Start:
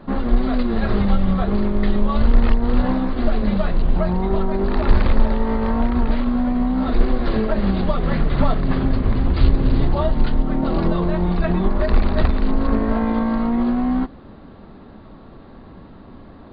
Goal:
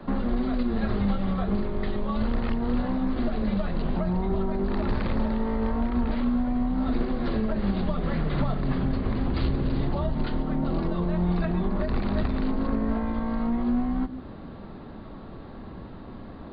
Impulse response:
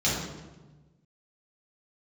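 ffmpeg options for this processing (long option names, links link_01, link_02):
-filter_complex "[0:a]acrossover=split=110|240[link_01][link_02][link_03];[link_01]acompressor=threshold=-28dB:ratio=4[link_04];[link_02]acompressor=threshold=-31dB:ratio=4[link_05];[link_03]acompressor=threshold=-32dB:ratio=4[link_06];[link_04][link_05][link_06]amix=inputs=3:normalize=0,asplit=2[link_07][link_08];[1:a]atrim=start_sample=2205,afade=type=out:start_time=0.22:duration=0.01,atrim=end_sample=10143,adelay=27[link_09];[link_08][link_09]afir=irnorm=-1:irlink=0,volume=-26dB[link_10];[link_07][link_10]amix=inputs=2:normalize=0"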